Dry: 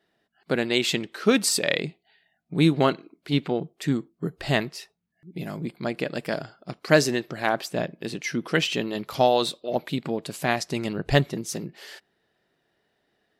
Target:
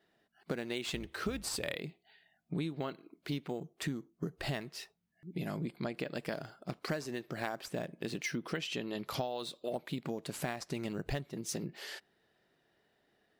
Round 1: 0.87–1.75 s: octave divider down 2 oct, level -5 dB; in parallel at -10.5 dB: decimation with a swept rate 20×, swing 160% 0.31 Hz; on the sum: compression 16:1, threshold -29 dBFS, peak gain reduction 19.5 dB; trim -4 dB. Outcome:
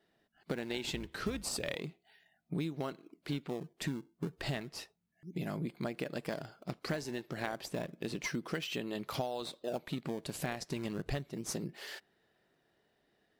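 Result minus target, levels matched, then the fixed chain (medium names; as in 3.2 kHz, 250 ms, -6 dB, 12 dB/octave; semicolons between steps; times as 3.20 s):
decimation with a swept rate: distortion +9 dB
0.87–1.75 s: octave divider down 2 oct, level -5 dB; in parallel at -10.5 dB: decimation with a swept rate 4×, swing 160% 0.31 Hz; on the sum: compression 16:1, threshold -29 dBFS, peak gain reduction 20.5 dB; trim -4 dB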